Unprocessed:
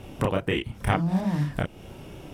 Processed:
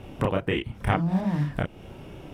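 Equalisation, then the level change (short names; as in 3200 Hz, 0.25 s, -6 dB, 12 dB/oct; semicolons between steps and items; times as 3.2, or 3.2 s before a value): tone controls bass 0 dB, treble -7 dB; 0.0 dB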